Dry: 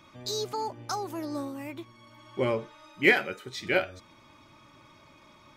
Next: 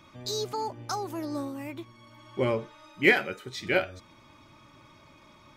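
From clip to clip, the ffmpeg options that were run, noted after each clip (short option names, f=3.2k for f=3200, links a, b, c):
-af "lowshelf=f=180:g=3.5"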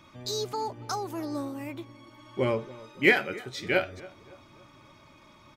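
-filter_complex "[0:a]asplit=2[a][b];[b]adelay=281,lowpass=f=1.4k:p=1,volume=-18.5dB,asplit=2[c][d];[d]adelay=281,lowpass=f=1.4k:p=1,volume=0.49,asplit=2[e][f];[f]adelay=281,lowpass=f=1.4k:p=1,volume=0.49,asplit=2[g][h];[h]adelay=281,lowpass=f=1.4k:p=1,volume=0.49[i];[a][c][e][g][i]amix=inputs=5:normalize=0"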